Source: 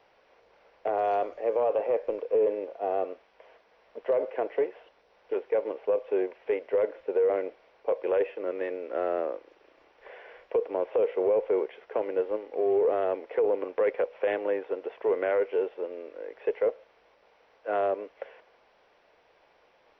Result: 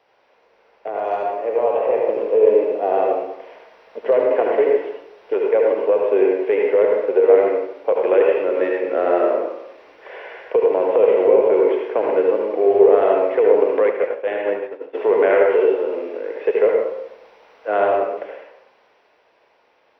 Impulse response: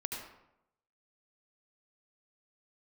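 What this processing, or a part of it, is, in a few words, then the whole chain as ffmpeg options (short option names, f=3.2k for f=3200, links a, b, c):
far laptop microphone: -filter_complex "[1:a]atrim=start_sample=2205[a];[0:a][a]afir=irnorm=-1:irlink=0,highpass=f=150:p=1,dynaudnorm=f=120:g=31:m=9.5dB,asplit=3[b][c][d];[b]afade=t=out:st=13.86:d=0.02[e];[c]agate=range=-33dB:threshold=-13dB:ratio=3:detection=peak,afade=t=in:st=13.86:d=0.02,afade=t=out:st=14.93:d=0.02[f];[d]afade=t=in:st=14.93:d=0.02[g];[e][f][g]amix=inputs=3:normalize=0,volume=2.5dB"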